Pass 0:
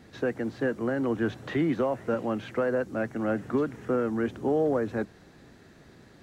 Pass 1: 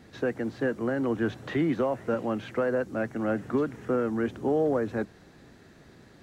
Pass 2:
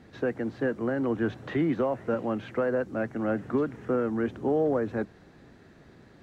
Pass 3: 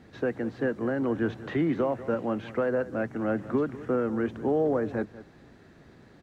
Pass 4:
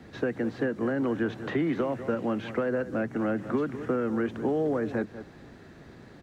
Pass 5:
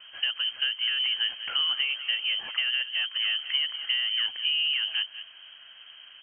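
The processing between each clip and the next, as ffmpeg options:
ffmpeg -i in.wav -af anull out.wav
ffmpeg -i in.wav -af "highshelf=frequency=4500:gain=-9.5" out.wav
ffmpeg -i in.wav -filter_complex "[0:a]asplit=2[link_01][link_02];[link_02]adelay=192.4,volume=-16dB,highshelf=frequency=4000:gain=-4.33[link_03];[link_01][link_03]amix=inputs=2:normalize=0" out.wav
ffmpeg -i in.wav -filter_complex "[0:a]acrossover=split=120|420|1400[link_01][link_02][link_03][link_04];[link_01]acompressor=threshold=-54dB:ratio=4[link_05];[link_02]acompressor=threshold=-32dB:ratio=4[link_06];[link_03]acompressor=threshold=-39dB:ratio=4[link_07];[link_04]acompressor=threshold=-43dB:ratio=4[link_08];[link_05][link_06][link_07][link_08]amix=inputs=4:normalize=0,volume=4.5dB" out.wav
ffmpeg -i in.wav -af "lowpass=frequency=2800:width_type=q:width=0.5098,lowpass=frequency=2800:width_type=q:width=0.6013,lowpass=frequency=2800:width_type=q:width=0.9,lowpass=frequency=2800:width_type=q:width=2.563,afreqshift=-3300" out.wav

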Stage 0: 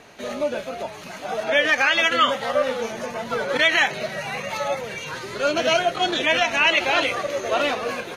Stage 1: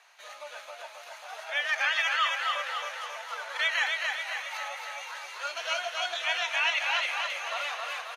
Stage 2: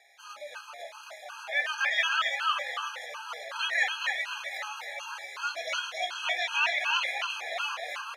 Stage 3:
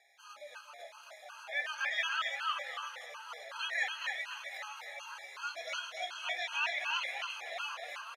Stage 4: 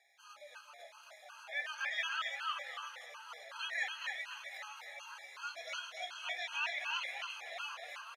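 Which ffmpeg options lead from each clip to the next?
ffmpeg -i in.wav -af "highpass=frequency=830:width=0.5412,highpass=frequency=830:width=1.3066,aecho=1:1:270|540|810|1080|1350|1620|1890:0.668|0.361|0.195|0.105|0.0568|0.0307|0.0166,volume=-9dB" out.wav
ffmpeg -i in.wav -af "flanger=delay=7.4:depth=9.5:regen=66:speed=0.28:shape=sinusoidal,afftfilt=real='re*gt(sin(2*PI*2.7*pts/sr)*(1-2*mod(floor(b*sr/1024/820),2)),0)':imag='im*gt(sin(2*PI*2.7*pts/sr)*(1-2*mod(floor(b*sr/1024/820),2)),0)':win_size=1024:overlap=0.75,volume=7dB" out.wav
ffmpeg -i in.wav -af "aecho=1:1:237:0.0841,volume=-7dB" out.wav
ffmpeg -i in.wav -af "lowshelf=frequency=490:gain=-5.5,volume=-3dB" out.wav

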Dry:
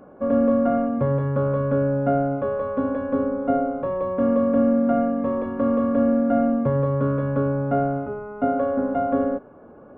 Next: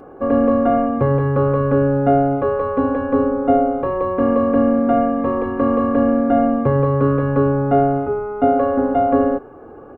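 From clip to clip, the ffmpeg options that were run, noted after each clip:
ffmpeg -i in.wav -af "aecho=1:1:2.5:0.57,volume=6.5dB" out.wav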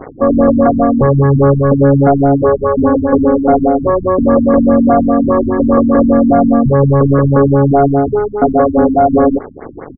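ffmpeg -i in.wav -af "apsyclip=13.5dB,acrusher=bits=3:mix=0:aa=0.5,afftfilt=real='re*lt(b*sr/1024,270*pow(2300/270,0.5+0.5*sin(2*PI*4.9*pts/sr)))':imag='im*lt(b*sr/1024,270*pow(2300/270,0.5+0.5*sin(2*PI*4.9*pts/sr)))':win_size=1024:overlap=0.75,volume=-3dB" out.wav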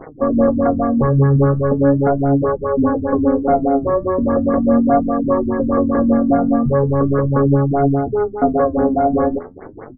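ffmpeg -i in.wav -af "flanger=delay=5.8:depth=9.3:regen=51:speed=0.39:shape=triangular,volume=-1.5dB" out.wav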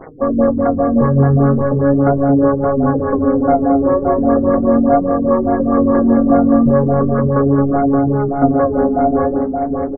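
ffmpeg -i in.wav -filter_complex "[0:a]bandreject=frequency=60:width_type=h:width=6,bandreject=frequency=120:width_type=h:width=6,bandreject=frequency=180:width_type=h:width=6,bandreject=frequency=240:width_type=h:width=6,bandreject=frequency=300:width_type=h:width=6,bandreject=frequency=360:width_type=h:width=6,bandreject=frequency=420:width_type=h:width=6,bandreject=frequency=480:width_type=h:width=6,asplit=2[link_01][link_02];[link_02]adelay=572,lowpass=frequency=1000:poles=1,volume=-3dB,asplit=2[link_03][link_04];[link_04]adelay=572,lowpass=frequency=1000:poles=1,volume=0.15,asplit=2[link_05][link_06];[link_06]adelay=572,lowpass=frequency=1000:poles=1,volume=0.15[link_07];[link_03][link_05][link_07]amix=inputs=3:normalize=0[link_08];[link_01][link_08]amix=inputs=2:normalize=0,volume=1dB" out.wav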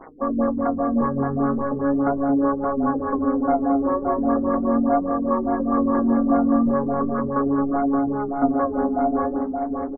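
ffmpeg -i in.wav -af "equalizer=frequency=125:width_type=o:width=1:gain=-12,equalizer=frequency=250:width_type=o:width=1:gain=5,equalizer=frequency=500:width_type=o:width=1:gain=-4,equalizer=frequency=1000:width_type=o:width=1:gain=7,volume=-8.5dB" out.wav

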